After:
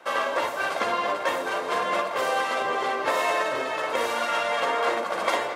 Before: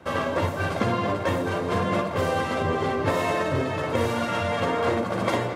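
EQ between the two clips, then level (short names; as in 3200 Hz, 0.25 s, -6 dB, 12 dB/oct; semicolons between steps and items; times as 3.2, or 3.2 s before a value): HPF 620 Hz 12 dB/oct; +3.0 dB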